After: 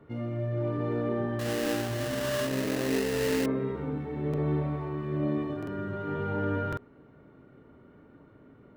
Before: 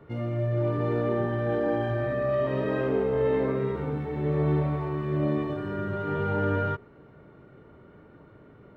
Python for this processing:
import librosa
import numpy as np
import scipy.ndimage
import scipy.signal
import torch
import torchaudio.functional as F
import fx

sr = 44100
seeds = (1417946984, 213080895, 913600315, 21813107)

y = fx.peak_eq(x, sr, hz=260.0, db=8.0, octaves=0.33)
y = fx.sample_hold(y, sr, seeds[0], rate_hz=2300.0, jitter_pct=20, at=(1.39, 3.46))
y = fx.buffer_glitch(y, sr, at_s=(4.29, 5.58, 6.68), block=2048, repeats=1)
y = y * librosa.db_to_amplitude(-4.5)